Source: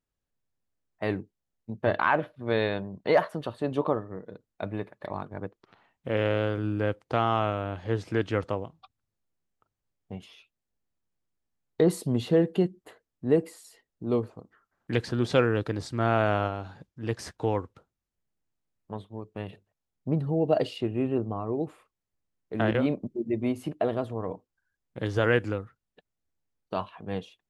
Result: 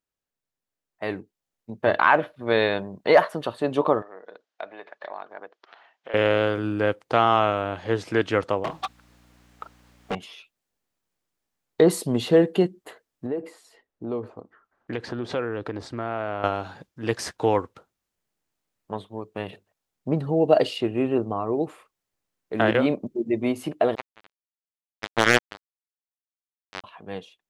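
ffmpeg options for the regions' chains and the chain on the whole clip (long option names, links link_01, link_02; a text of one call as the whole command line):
ffmpeg -i in.wav -filter_complex "[0:a]asettb=1/sr,asplit=3[link_01][link_02][link_03];[link_01]atrim=end=4.024[link_04];[link_02]atrim=start=4.02:end=6.14,asetpts=PTS-STARTPTS,afade=type=in:duration=0.004:curve=qsin,afade=type=out:start_time=2.116:duration=0.004:curve=qsin,acompressor=threshold=-41dB:ratio=2.5:attack=3.2:release=140:knee=1:detection=peak,highpass=490,equalizer=frequency=690:width_type=q:width=4:gain=5,equalizer=frequency=1600:width_type=q:width=4:gain=4,equalizer=frequency=3200:width_type=q:width=4:gain=3,lowpass=frequency=6000:width=0.5412,lowpass=frequency=6000:width=1.3066[link_05];[link_03]atrim=start=6.136[link_06];[link_04][link_05]acrossfade=duration=0.004:curve1=hsin:curve2=qsin[link_07];[link_07][link_06]acrossfade=duration=0.004:curve1=qsin:curve2=hsin,asettb=1/sr,asplit=3[link_08][link_09][link_10];[link_08]atrim=end=8.644[link_11];[link_09]atrim=start=8.64:end=10.15,asetpts=PTS-STARTPTS,afade=type=in:duration=0.004:curve=qsin,afade=type=out:start_time=1.506:duration=0.004:curve=qsin,asplit=2[link_12][link_13];[link_13]highpass=frequency=720:poles=1,volume=34dB,asoftclip=type=tanh:threshold=-24dB[link_14];[link_12][link_14]amix=inputs=2:normalize=0,lowpass=frequency=2500:poles=1,volume=-6dB,aeval=exprs='val(0)+0.00158*(sin(2*PI*60*n/s)+sin(2*PI*2*60*n/s)/2+sin(2*PI*3*60*n/s)/3+sin(2*PI*4*60*n/s)/4+sin(2*PI*5*60*n/s)/5)':channel_layout=same[link_15];[link_10]atrim=start=10.146[link_16];[link_11][link_15]acrossfade=duration=0.004:curve1=hsin:curve2=qsin[link_17];[link_17][link_16]acrossfade=duration=0.004:curve1=qsin:curve2=hsin,asettb=1/sr,asplit=3[link_18][link_19][link_20];[link_18]atrim=end=13.264[link_21];[link_19]atrim=start=13.26:end=16.44,asetpts=PTS-STARTPTS,afade=type=in:duration=0.004:curve=qsin,afade=type=out:start_time=3.176:duration=0.004:curve=qsin,lowpass=frequency=1500:poles=1,equalizer=frequency=160:width_type=o:width=0.2:gain=-12,acompressor=threshold=-31dB:ratio=4:attack=3.2:release=140:knee=1:detection=peak[link_22];[link_20]atrim=start=16.436[link_23];[link_21][link_22]acrossfade=duration=0.004:curve1=hsin:curve2=qsin[link_24];[link_24][link_23]acrossfade=duration=0.004:curve1=qsin:curve2=hsin,asettb=1/sr,asplit=3[link_25][link_26][link_27];[link_25]atrim=end=23.954[link_28];[link_26]atrim=start=23.95:end=26.84,asetpts=PTS-STARTPTS,afade=type=in:duration=0.004:curve=qsin,afade=type=out:start_time=2.886:duration=0.004:curve=qsin,lowpass=4700,acrusher=bits=2:mix=0:aa=0.5[link_29];[link_27]atrim=start=26.836[link_30];[link_28][link_29]acrossfade=duration=0.004:curve1=hsin:curve2=qsin[link_31];[link_31][link_30]acrossfade=duration=0.004:curve1=qsin:curve2=hsin,dynaudnorm=framelen=420:gausssize=7:maxgain=9dB,lowshelf=frequency=200:gain=-12" out.wav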